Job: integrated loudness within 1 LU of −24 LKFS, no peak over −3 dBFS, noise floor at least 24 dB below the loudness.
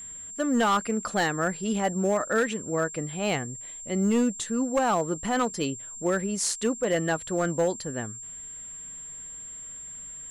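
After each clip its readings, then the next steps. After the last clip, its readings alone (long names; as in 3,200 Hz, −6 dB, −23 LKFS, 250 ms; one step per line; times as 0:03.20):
share of clipped samples 1.0%; peaks flattened at −18.0 dBFS; interfering tone 7,400 Hz; level of the tone −38 dBFS; integrated loudness −28.0 LKFS; sample peak −18.0 dBFS; target loudness −24.0 LKFS
→ clipped peaks rebuilt −18 dBFS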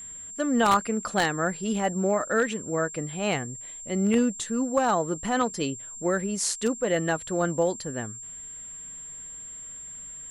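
share of clipped samples 0.0%; interfering tone 7,400 Hz; level of the tone −38 dBFS
→ notch filter 7,400 Hz, Q 30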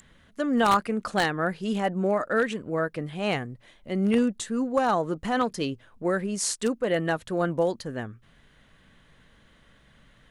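interfering tone none found; integrated loudness −26.5 LKFS; sample peak −9.0 dBFS; target loudness −24.0 LKFS
→ level +2.5 dB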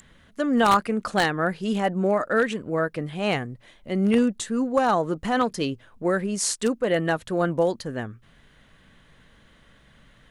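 integrated loudness −24.0 LKFS; sample peak −6.5 dBFS; background noise floor −57 dBFS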